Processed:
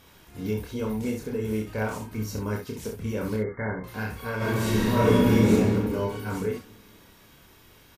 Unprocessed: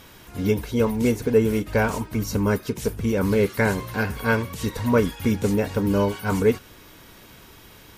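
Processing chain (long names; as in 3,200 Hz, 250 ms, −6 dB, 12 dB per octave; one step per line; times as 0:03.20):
brickwall limiter −14 dBFS, peak gain reduction 6.5 dB
0:03.36–0:03.84: linear-phase brick-wall low-pass 2,200 Hz
ambience of single reflections 28 ms −3 dB, 65 ms −6.5 dB, 77 ms −14.5 dB
0:04.37–0:05.52: thrown reverb, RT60 2 s, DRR −11.5 dB
level −9 dB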